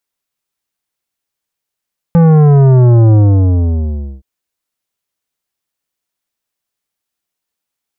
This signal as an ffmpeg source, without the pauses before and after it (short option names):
-f lavfi -i "aevalsrc='0.562*clip((2.07-t)/1.09,0,1)*tanh(3.98*sin(2*PI*170*2.07/log(65/170)*(exp(log(65/170)*t/2.07)-1)))/tanh(3.98)':d=2.07:s=44100"